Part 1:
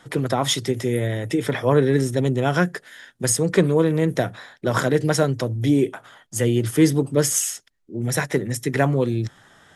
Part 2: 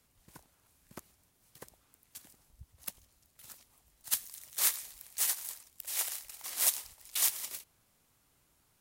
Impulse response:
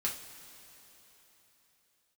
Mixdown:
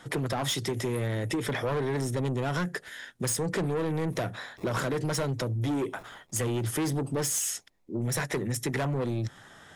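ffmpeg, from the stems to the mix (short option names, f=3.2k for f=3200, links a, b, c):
-filter_complex "[0:a]asoftclip=type=tanh:threshold=-20.5dB,volume=0.5dB,asplit=2[a][b];[1:a]acrusher=samples=29:mix=1:aa=0.000001,volume=-19dB,asplit=2[c][d];[d]volume=-19.5dB[e];[b]apad=whole_len=388360[f];[c][f]sidechaincompress=threshold=-36dB:ratio=8:attack=16:release=123[g];[2:a]atrim=start_sample=2205[h];[e][h]afir=irnorm=-1:irlink=0[i];[a][g][i]amix=inputs=3:normalize=0,acompressor=threshold=-27dB:ratio=6"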